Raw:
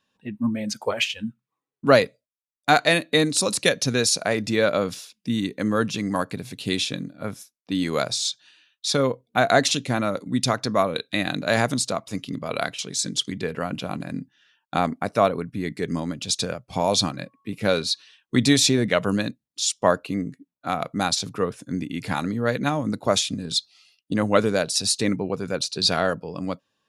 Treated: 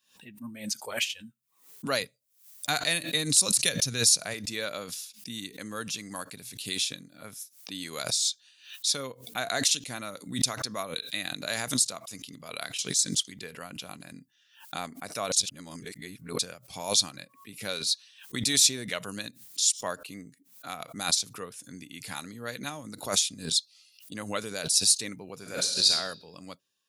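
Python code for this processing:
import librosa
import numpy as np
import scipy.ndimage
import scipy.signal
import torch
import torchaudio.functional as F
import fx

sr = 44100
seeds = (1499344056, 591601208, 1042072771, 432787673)

y = fx.peak_eq(x, sr, hz=120.0, db=9.0, octaves=1.3, at=(2.0, 4.34))
y = fx.reverb_throw(y, sr, start_s=25.35, length_s=0.54, rt60_s=0.99, drr_db=0.0)
y = fx.edit(y, sr, fx.reverse_span(start_s=15.32, length_s=1.07), tone=tone)
y = scipy.signal.lfilter([1.0, -0.9], [1.0], y)
y = fx.pre_swell(y, sr, db_per_s=120.0)
y = F.gain(torch.from_numpy(y), 2.0).numpy()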